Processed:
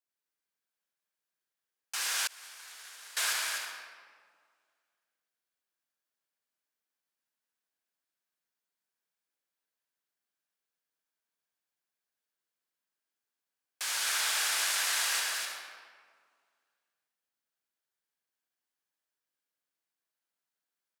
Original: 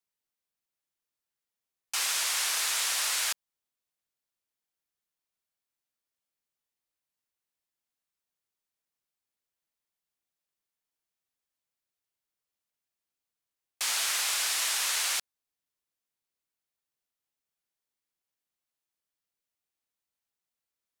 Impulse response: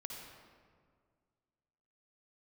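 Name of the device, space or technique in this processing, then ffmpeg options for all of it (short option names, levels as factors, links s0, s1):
stadium PA: -filter_complex "[0:a]highpass=190,equalizer=f=1600:t=o:w=0.27:g=7,aecho=1:1:174.9|253.6:0.316|0.631[s0];[1:a]atrim=start_sample=2205[s1];[s0][s1]afir=irnorm=-1:irlink=0,asettb=1/sr,asplit=3[s2][s3][s4];[s2]atrim=end=2.274[s5];[s3]atrim=start=2.27:end=3.17,asetpts=PTS-STARTPTS,afade=t=in:d=0.004:c=qsin,afade=t=out:st=0.896:d=0.004:c=qsin,agate=range=0.0224:threshold=0.141:ratio=3:detection=peak[s6];[s4]atrim=start=3.166[s7];[s5][s6]acrossfade=d=0.004:c1=hsin:c2=qsin[s8];[s8][s7]acrossfade=d=0.004:c1=qsin:c2=hsin"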